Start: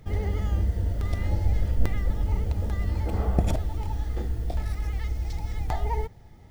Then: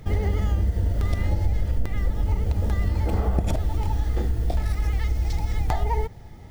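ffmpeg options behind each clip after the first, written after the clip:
ffmpeg -i in.wav -af "acompressor=threshold=-25dB:ratio=6,volume=7dB" out.wav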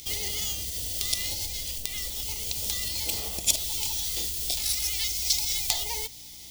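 ffmpeg -i in.wav -af "aeval=exprs='val(0)+0.0126*(sin(2*PI*60*n/s)+sin(2*PI*2*60*n/s)/2+sin(2*PI*3*60*n/s)/3+sin(2*PI*4*60*n/s)/4+sin(2*PI*5*60*n/s)/5)':channel_layout=same,aexciter=amount=14.3:drive=8.5:freq=2500,bass=frequency=250:gain=-9,treble=frequency=4000:gain=3,volume=-11.5dB" out.wav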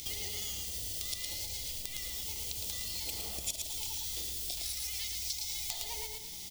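ffmpeg -i in.wav -af "aecho=1:1:111|222|333|444:0.562|0.157|0.0441|0.0123,acompressor=threshold=-38dB:ratio=3" out.wav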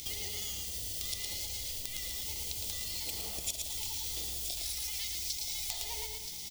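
ffmpeg -i in.wav -af "aecho=1:1:975:0.355" out.wav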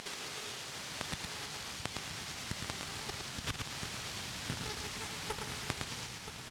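ffmpeg -i in.wav -af "aeval=exprs='abs(val(0))':channel_layout=same,highpass=110,lowpass=5800,asubboost=boost=5.5:cutoff=170,volume=5dB" out.wav

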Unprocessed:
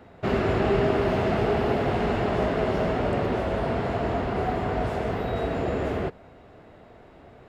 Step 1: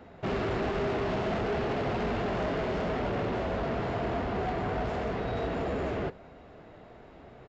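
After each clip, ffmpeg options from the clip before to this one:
ffmpeg -i in.wav -af "aresample=16000,asoftclip=type=tanh:threshold=-26dB,aresample=44100,flanger=delay=3.6:depth=3.4:regen=-71:speed=1.4:shape=triangular,volume=3.5dB" out.wav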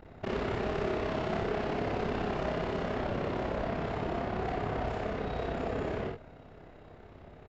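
ffmpeg -i in.wav -filter_complex "[0:a]aeval=exprs='val(0)+0.00282*(sin(2*PI*50*n/s)+sin(2*PI*2*50*n/s)/2+sin(2*PI*3*50*n/s)/3+sin(2*PI*4*50*n/s)/4+sin(2*PI*5*50*n/s)/5)':channel_layout=same,tremolo=f=33:d=1,asplit=2[link_01][link_02];[link_02]aecho=0:1:48|67:0.631|0.335[link_03];[link_01][link_03]amix=inputs=2:normalize=0" out.wav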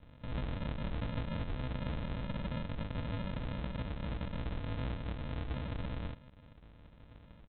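ffmpeg -i in.wav -af "equalizer=frequency=67:width=1.5:gain=2.5,flanger=delay=15:depth=3.7:speed=0.51,aresample=8000,acrusher=samples=21:mix=1:aa=0.000001,aresample=44100,volume=-2dB" out.wav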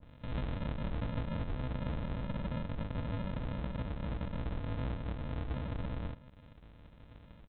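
ffmpeg -i in.wav -af "adynamicequalizer=threshold=0.001:dfrequency=1800:dqfactor=0.7:tfrequency=1800:tqfactor=0.7:attack=5:release=100:ratio=0.375:range=2.5:mode=cutabove:tftype=highshelf,volume=1dB" out.wav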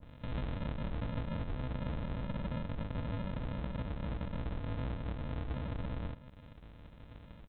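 ffmpeg -i in.wav -af "acompressor=threshold=-42dB:ratio=1.5,volume=2.5dB" out.wav

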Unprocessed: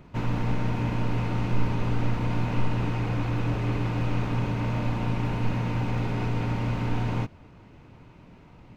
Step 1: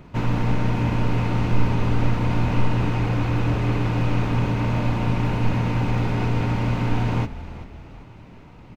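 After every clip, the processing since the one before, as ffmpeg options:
ffmpeg -i in.wav -filter_complex "[0:a]asplit=5[link_01][link_02][link_03][link_04][link_05];[link_02]adelay=389,afreqshift=-38,volume=-15dB[link_06];[link_03]adelay=778,afreqshift=-76,volume=-22.1dB[link_07];[link_04]adelay=1167,afreqshift=-114,volume=-29.3dB[link_08];[link_05]adelay=1556,afreqshift=-152,volume=-36.4dB[link_09];[link_01][link_06][link_07][link_08][link_09]amix=inputs=5:normalize=0,volume=5dB" out.wav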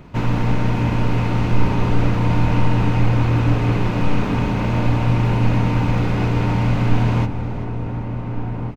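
ffmpeg -i in.wav -filter_complex "[0:a]asplit=2[link_01][link_02];[link_02]adelay=1458,volume=-6dB,highshelf=frequency=4000:gain=-32.8[link_03];[link_01][link_03]amix=inputs=2:normalize=0,volume=3dB" out.wav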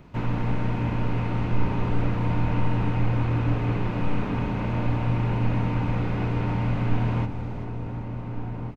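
ffmpeg -i in.wav -filter_complex "[0:a]acrossover=split=3400[link_01][link_02];[link_02]acompressor=threshold=-52dB:ratio=4:attack=1:release=60[link_03];[link_01][link_03]amix=inputs=2:normalize=0,volume=-7dB" out.wav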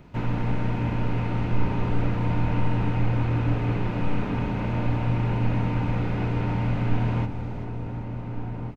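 ffmpeg -i in.wav -af "bandreject=frequency=1100:width=14" out.wav

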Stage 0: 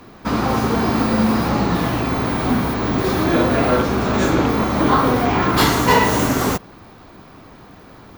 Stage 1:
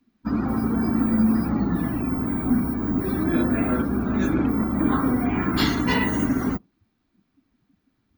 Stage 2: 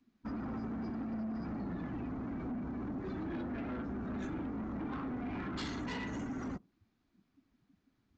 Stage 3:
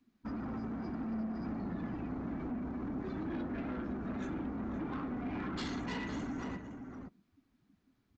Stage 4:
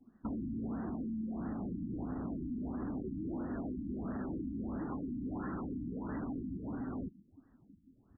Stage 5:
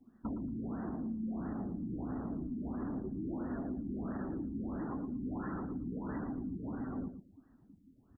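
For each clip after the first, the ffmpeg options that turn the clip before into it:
ffmpeg -i in.wav -af "afftdn=noise_reduction=24:noise_floor=-25,equalizer=frequency=125:width_type=o:width=1:gain=-5,equalizer=frequency=250:width_type=o:width=1:gain=6,equalizer=frequency=500:width_type=o:width=1:gain=-10,equalizer=frequency=1000:width_type=o:width=1:gain=-8,volume=-3.5dB" out.wav
ffmpeg -i in.wav -af "acompressor=threshold=-29dB:ratio=3,aresample=16000,asoftclip=type=tanh:threshold=-30dB,aresample=44100,volume=-5dB" out.wav
ffmpeg -i in.wav -filter_complex "[0:a]asplit=2[link_01][link_02];[link_02]adelay=513.1,volume=-7dB,highshelf=frequency=4000:gain=-11.5[link_03];[link_01][link_03]amix=inputs=2:normalize=0" out.wav
ffmpeg -i in.wav -af "acompressor=threshold=-45dB:ratio=10,afftfilt=real='re*lt(b*sr/1024,320*pow(2000/320,0.5+0.5*sin(2*PI*1.5*pts/sr)))':imag='im*lt(b*sr/1024,320*pow(2000/320,0.5+0.5*sin(2*PI*1.5*pts/sr)))':win_size=1024:overlap=0.75,volume=9dB" out.wav
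ffmpeg -i in.wav -af "aecho=1:1:114|228:0.316|0.0506" out.wav

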